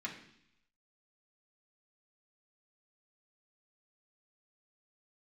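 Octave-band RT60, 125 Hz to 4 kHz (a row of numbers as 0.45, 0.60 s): 0.90, 0.85, 0.70, 0.70, 0.85, 0.90 s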